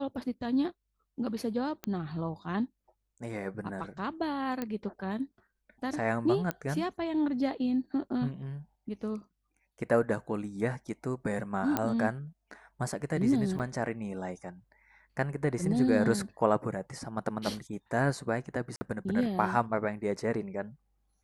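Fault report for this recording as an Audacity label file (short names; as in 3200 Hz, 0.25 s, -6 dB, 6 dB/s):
1.840000	1.840000	pop -19 dBFS
4.620000	4.620000	pop -20 dBFS
6.510000	6.510000	pop -17 dBFS
11.770000	11.770000	pop -13 dBFS
13.590000	13.600000	gap 7 ms
18.760000	18.810000	gap 50 ms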